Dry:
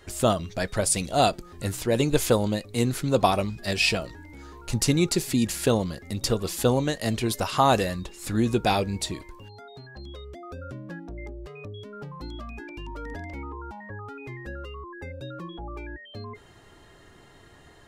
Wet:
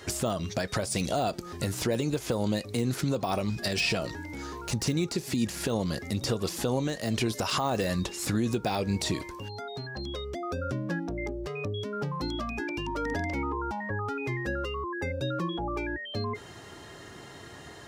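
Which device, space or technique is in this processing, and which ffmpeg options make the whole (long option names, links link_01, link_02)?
broadcast voice chain: -af "highpass=85,deesser=0.75,acompressor=threshold=-29dB:ratio=5,equalizer=frequency=5600:width_type=o:width=0.58:gain=5,alimiter=level_in=1dB:limit=-24dB:level=0:latency=1:release=112,volume=-1dB,volume=7dB"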